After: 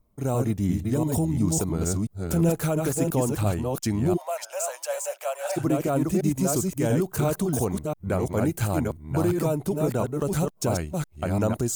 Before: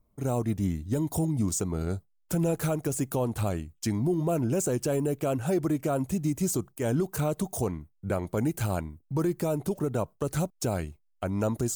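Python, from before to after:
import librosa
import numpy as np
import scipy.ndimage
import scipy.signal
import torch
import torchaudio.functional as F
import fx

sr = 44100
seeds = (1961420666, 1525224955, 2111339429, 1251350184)

y = fx.reverse_delay(x, sr, ms=345, wet_db=-3.0)
y = fx.cheby1_highpass(y, sr, hz=560.0, order=6, at=(4.16, 5.56), fade=0.02)
y = F.gain(torch.from_numpy(y), 2.5).numpy()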